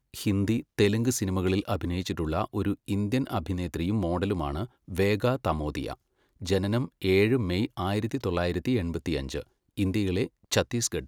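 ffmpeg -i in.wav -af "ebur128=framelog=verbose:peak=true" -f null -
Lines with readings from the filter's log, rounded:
Integrated loudness:
  I:         -28.2 LUFS
  Threshold: -38.4 LUFS
Loudness range:
  LRA:         2.0 LU
  Threshold: -48.6 LUFS
  LRA low:   -29.6 LUFS
  LRA high:  -27.6 LUFS
True peak:
  Peak:       -8.0 dBFS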